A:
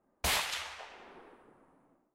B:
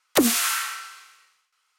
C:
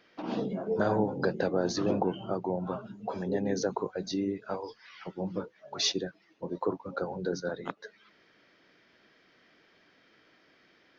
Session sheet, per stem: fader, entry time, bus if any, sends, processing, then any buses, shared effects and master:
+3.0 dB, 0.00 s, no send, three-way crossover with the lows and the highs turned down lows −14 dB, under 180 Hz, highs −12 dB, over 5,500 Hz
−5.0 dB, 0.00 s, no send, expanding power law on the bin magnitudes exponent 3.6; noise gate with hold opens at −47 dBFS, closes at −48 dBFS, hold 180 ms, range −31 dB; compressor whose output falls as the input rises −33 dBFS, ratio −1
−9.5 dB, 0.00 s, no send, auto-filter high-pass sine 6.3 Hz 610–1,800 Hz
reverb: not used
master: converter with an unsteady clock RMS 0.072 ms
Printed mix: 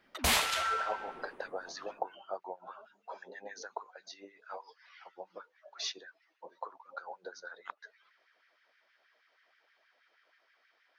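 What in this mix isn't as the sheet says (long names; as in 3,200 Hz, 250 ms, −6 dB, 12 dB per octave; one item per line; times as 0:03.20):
stem A: missing three-way crossover with the lows and the highs turned down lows −14 dB, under 180 Hz, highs −12 dB, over 5,500 Hz
master: missing converter with an unsteady clock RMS 0.072 ms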